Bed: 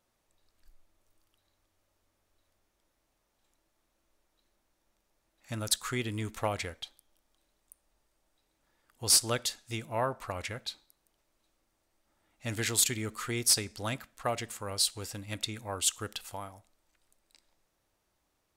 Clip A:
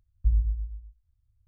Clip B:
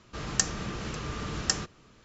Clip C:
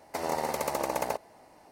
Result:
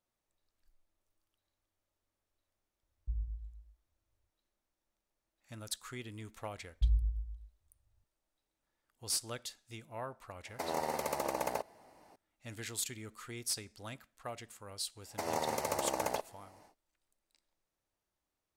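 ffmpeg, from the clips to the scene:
ffmpeg -i bed.wav -i cue0.wav -i cue1.wav -i cue2.wav -filter_complex "[1:a]asplit=2[link_01][link_02];[3:a]asplit=2[link_03][link_04];[0:a]volume=-11.5dB[link_05];[link_04]equalizer=frequency=6600:width_type=o:width=0.77:gain=3.5[link_06];[link_01]atrim=end=1.47,asetpts=PTS-STARTPTS,volume=-14.5dB,afade=type=in:duration=0.004:curve=hsin,afade=type=out:start_time=1.466:duration=0.004:curve=hsin,adelay=2830[link_07];[link_02]atrim=end=1.47,asetpts=PTS-STARTPTS,volume=-6dB,afade=type=in:duration=0.004:curve=hsin,afade=type=out:start_time=1.466:duration=0.004:curve=hsin,adelay=6570[link_08];[link_03]atrim=end=1.71,asetpts=PTS-STARTPTS,volume=-5dB,afade=type=in:duration=0.004:curve=hsin,afade=type=out:start_time=1.706:duration=0.004:curve=hsin,adelay=10450[link_09];[link_06]atrim=end=1.71,asetpts=PTS-STARTPTS,volume=-4.5dB,afade=type=in:duration=0.1,afade=type=out:start_time=1.61:duration=0.1,adelay=15040[link_10];[link_05][link_07][link_08][link_09][link_10]amix=inputs=5:normalize=0" out.wav

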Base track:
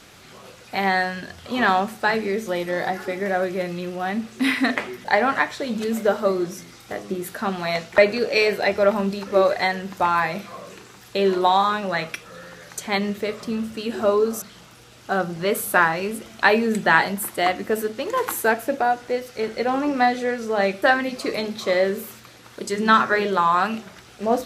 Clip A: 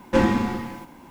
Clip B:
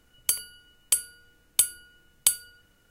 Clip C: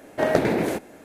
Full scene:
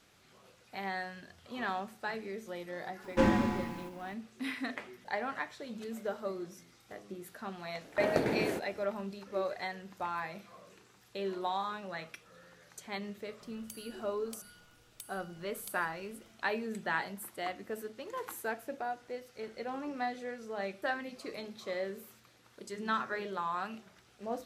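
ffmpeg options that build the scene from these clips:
ffmpeg -i bed.wav -i cue0.wav -i cue1.wav -i cue2.wav -filter_complex "[0:a]volume=-17dB[link_01];[2:a]acompressor=threshold=-40dB:ratio=6:attack=3.2:release=140:knee=1:detection=peak[link_02];[1:a]atrim=end=1.1,asetpts=PTS-STARTPTS,volume=-7.5dB,afade=type=in:duration=0.004:curve=hsin,afade=type=out:start_time=1.096:duration=0.004:curve=hsin,adelay=3040[link_03];[3:a]atrim=end=1.04,asetpts=PTS-STARTPTS,volume=-9.5dB,afade=type=in:duration=0.004:curve=hsin,afade=type=out:start_time=1.036:duration=0.004:curve=hsin,adelay=7810[link_04];[link_02]atrim=end=2.9,asetpts=PTS-STARTPTS,volume=-6dB,afade=type=in:duration=0.004:curve=hsin,afade=type=out:start_time=2.896:duration=0.004:curve=hsin,adelay=13410[link_05];[link_01][link_03][link_04][link_05]amix=inputs=4:normalize=0" out.wav

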